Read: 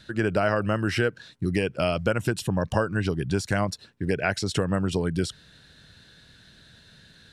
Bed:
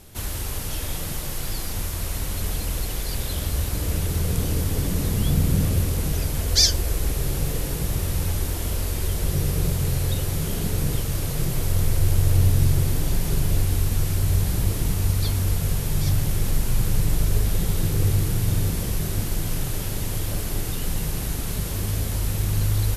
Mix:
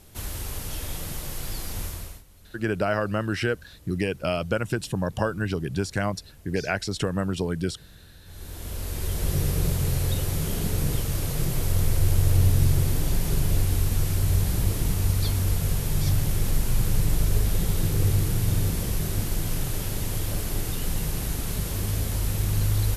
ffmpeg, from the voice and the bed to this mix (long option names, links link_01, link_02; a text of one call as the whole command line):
ffmpeg -i stem1.wav -i stem2.wav -filter_complex "[0:a]adelay=2450,volume=-1.5dB[link_01];[1:a]volume=20.5dB,afade=type=out:start_time=1.85:duration=0.38:silence=0.0794328,afade=type=in:start_time=8.25:duration=1.07:silence=0.0595662[link_02];[link_01][link_02]amix=inputs=2:normalize=0" out.wav